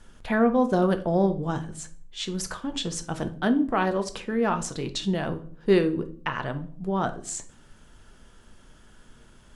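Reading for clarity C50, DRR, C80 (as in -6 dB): 14.5 dB, 7.5 dB, 19.5 dB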